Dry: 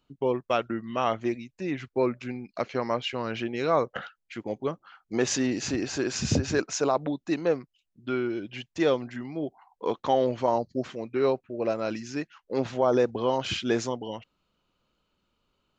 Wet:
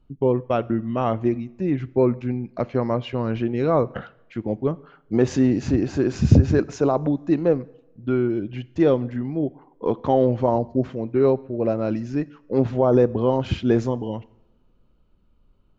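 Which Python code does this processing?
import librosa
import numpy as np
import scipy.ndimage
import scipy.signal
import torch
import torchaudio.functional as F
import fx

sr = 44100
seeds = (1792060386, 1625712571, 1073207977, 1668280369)

y = fx.tilt_eq(x, sr, slope=-4.0)
y = fx.rev_double_slope(y, sr, seeds[0], early_s=0.81, late_s=3.1, knee_db=-27, drr_db=18.5)
y = y * librosa.db_to_amplitude(1.0)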